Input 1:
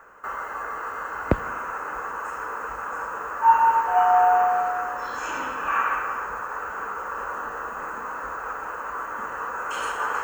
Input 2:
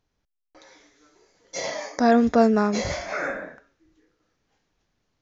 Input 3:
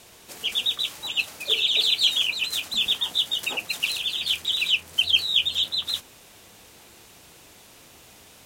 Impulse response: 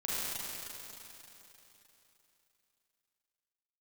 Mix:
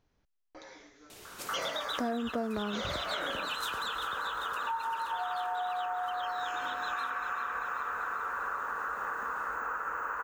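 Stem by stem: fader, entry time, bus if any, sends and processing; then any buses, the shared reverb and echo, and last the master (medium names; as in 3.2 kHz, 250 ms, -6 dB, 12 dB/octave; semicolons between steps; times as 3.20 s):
-6.0 dB, 1.25 s, no send, echo send -3.5 dB, peaking EQ 1.5 kHz +7 dB 1.3 oct; compression 2:1, threshold -19 dBFS, peak gain reduction 6.5 dB
+2.0 dB, 0.00 s, no send, no echo send, treble shelf 4.2 kHz -7.5 dB
3.68 s -1.5 dB -> 4.12 s -11 dB, 1.10 s, no send, echo send -12 dB, compression, threshold -26 dBFS, peak gain reduction 12 dB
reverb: none
echo: feedback delay 391 ms, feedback 53%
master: compression 6:1, threshold -32 dBFS, peak gain reduction 19.5 dB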